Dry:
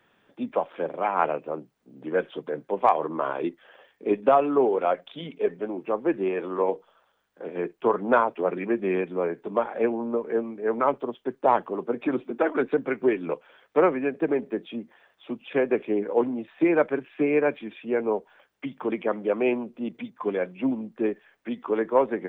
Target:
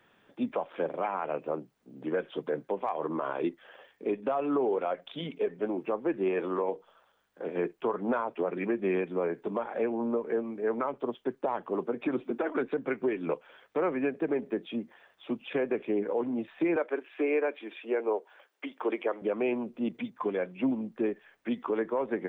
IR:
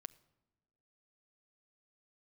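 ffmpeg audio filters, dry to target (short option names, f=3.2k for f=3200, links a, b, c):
-filter_complex "[0:a]asettb=1/sr,asplit=3[a][b][c];[a]atrim=end=16.764[d];[b]atrim=start=16.76:end=19.22,asetpts=PTS-STARTPTS,afade=t=in:d=0.004:c=qsin,afade=t=out:st=2.456:d=0.004:c=qsin,highpass=f=320:w=0.5412,highpass=f=320:w=1.3066[e];[c]atrim=start=19.216[f];[d][e]acrossfade=d=0.004:c1=hsin:c2=qsin[g];[g][f]acrossfade=d=0.004:c1=qsin:c2=hsin,alimiter=limit=-20dB:level=0:latency=1:release=209"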